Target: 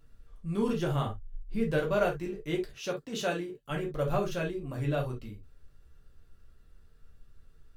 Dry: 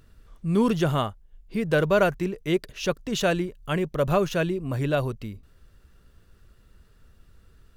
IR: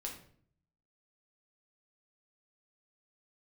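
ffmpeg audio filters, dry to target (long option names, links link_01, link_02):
-filter_complex "[0:a]asettb=1/sr,asplit=3[link_01][link_02][link_03];[link_01]atrim=end=1.054[link_04];[link_02]atrim=start=1.05:end=1.72,asetpts=PTS-STARTPTS,afade=type=in:duration=0.004:curve=qsin,afade=type=out:start_time=0.666:duration=0.004:curve=qsin,lowshelf=frequency=200:gain=9[link_05];[link_03]atrim=start=1.716[link_06];[link_04][link_05]acrossfade=duration=0.004:curve1=hsin:curve2=qsin[link_07];[link_07][link_06]acrossfade=duration=0.004:curve1=qsin:curve2=hsin,asettb=1/sr,asplit=3[link_08][link_09][link_10];[link_08]atrim=end=2.724[link_11];[link_09]atrim=start=2.72:end=3.7,asetpts=PTS-STARTPTS,afade=type=in:duration=0.004:curve=qsin,afade=type=out:start_time=0.976:duration=0.004:curve=qsin,highpass=140[link_12];[link_10]atrim=start=3.696[link_13];[link_11][link_12]acrossfade=duration=0.004:curve1=hsin:curve2=qsin[link_14];[link_14][link_13]acrossfade=duration=0.004:curve1=qsin:curve2=hsin[link_15];[1:a]atrim=start_sample=2205,afade=type=out:start_time=0.17:duration=0.01,atrim=end_sample=7938,asetrate=70560,aresample=44100[link_16];[link_15][link_16]afir=irnorm=-1:irlink=0,volume=-2dB"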